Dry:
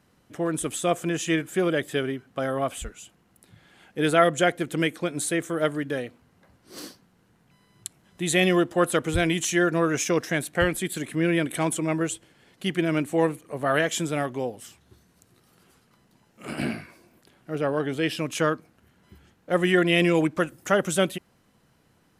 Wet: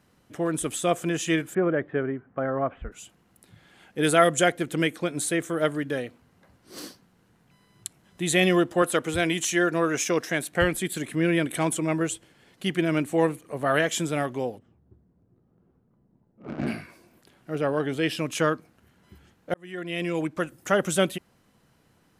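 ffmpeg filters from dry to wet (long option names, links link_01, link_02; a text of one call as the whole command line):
ffmpeg -i in.wav -filter_complex "[0:a]asplit=3[link_01][link_02][link_03];[link_01]afade=type=out:start_time=1.53:duration=0.02[link_04];[link_02]lowpass=frequency=1800:width=0.5412,lowpass=frequency=1800:width=1.3066,afade=type=in:start_time=1.53:duration=0.02,afade=type=out:start_time=2.91:duration=0.02[link_05];[link_03]afade=type=in:start_time=2.91:duration=0.02[link_06];[link_04][link_05][link_06]amix=inputs=3:normalize=0,asettb=1/sr,asplit=3[link_07][link_08][link_09];[link_07]atrim=end=4.034[link_10];[link_08]atrim=start=4.03:end=4.49,asetpts=PTS-STARTPTS,afade=type=in:duration=0.004:curve=qsin,afade=type=out:start_time=0.456:duration=0.004:curve=qsin,equalizer=frequency=9300:width_type=o:width=1.3:gain=8[link_11];[link_09]atrim=start=4.486[link_12];[link_10][link_11]acrossfade=duration=0.004:curve1=hsin:curve2=qsin[link_13];[link_13][link_12]acrossfade=duration=0.004:curve1=qsin:curve2=hsin,asettb=1/sr,asplit=3[link_14][link_15][link_16];[link_14]atrim=end=8.824[link_17];[link_15]atrim=start=8.82:end=10.52,asetpts=PTS-STARTPTS,afade=type=in:duration=0.004:curve=qsin,afade=type=out:start_time=1.696:duration=0.004:curve=qsin,highpass=frequency=210:poles=1[link_18];[link_16]atrim=start=10.516[link_19];[link_17][link_18]acrossfade=duration=0.004:curve1=hsin:curve2=qsin[link_20];[link_20][link_19]acrossfade=duration=0.004:curve1=qsin:curve2=hsin,asplit=3[link_21][link_22][link_23];[link_21]afade=type=out:start_time=14.57:duration=0.02[link_24];[link_22]adynamicsmooth=sensitivity=1.5:basefreq=520,afade=type=in:start_time=14.57:duration=0.02,afade=type=out:start_time=16.66:duration=0.02[link_25];[link_23]afade=type=in:start_time=16.66:duration=0.02[link_26];[link_24][link_25][link_26]amix=inputs=3:normalize=0,asplit=2[link_27][link_28];[link_27]atrim=end=19.54,asetpts=PTS-STARTPTS,afade=type=out:start_time=19.536:duration=0.004:curve=hsin[link_29];[link_28]atrim=start=19.54,asetpts=PTS-STARTPTS,afade=type=in:duration=1.32[link_30];[link_29][link_30]concat=n=2:v=0:a=1" out.wav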